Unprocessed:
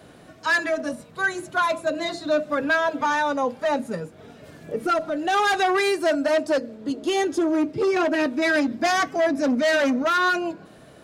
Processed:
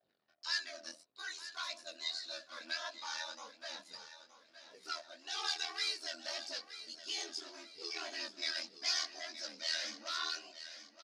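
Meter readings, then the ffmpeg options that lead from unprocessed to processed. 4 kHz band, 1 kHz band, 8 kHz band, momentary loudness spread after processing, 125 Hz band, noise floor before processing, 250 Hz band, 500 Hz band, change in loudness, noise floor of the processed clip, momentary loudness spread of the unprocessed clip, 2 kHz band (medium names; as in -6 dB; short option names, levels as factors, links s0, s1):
-4.5 dB, -24.5 dB, -7.0 dB, 13 LU, under -35 dB, -48 dBFS, -35.0 dB, -30.0 dB, -17.0 dB, -71 dBFS, 8 LU, -19.5 dB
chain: -af "anlmdn=0.0398,aphaser=in_gain=1:out_gain=1:delay=3.6:decay=0.38:speed=0.55:type=triangular,aeval=exprs='val(0)*sin(2*PI*40*n/s)':c=same,bandpass=f=4900:t=q:w=4.2:csg=0,flanger=delay=17.5:depth=7.1:speed=1.7,aecho=1:1:920|1840|2760|3680:0.224|0.0895|0.0358|0.0143,volume=2.24"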